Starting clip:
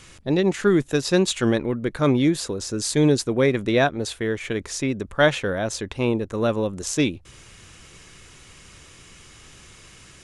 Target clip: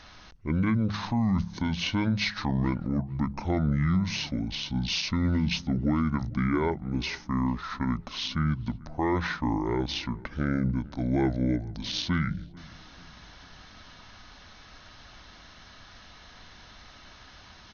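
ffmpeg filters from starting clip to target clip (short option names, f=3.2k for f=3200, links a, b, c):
-filter_complex "[0:a]bandreject=f=60:t=h:w=6,bandreject=f=120:t=h:w=6,bandreject=f=180:t=h:w=6,bandreject=f=240:t=h:w=6,bandreject=f=300:t=h:w=6,bandreject=f=360:t=h:w=6,alimiter=limit=-15dB:level=0:latency=1:release=31,asplit=2[a][b];[b]adelay=256,lowpass=f=2k:p=1,volume=-21.5dB,asplit=2[c][d];[d]adelay=256,lowpass=f=2k:p=1,volume=0.52,asplit=2[e][f];[f]adelay=256,lowpass=f=2k:p=1,volume=0.52,asplit=2[g][h];[h]adelay=256,lowpass=f=2k:p=1,volume=0.52[i];[a][c][e][g][i]amix=inputs=5:normalize=0,asetrate=25442,aresample=44100,volume=-2.5dB"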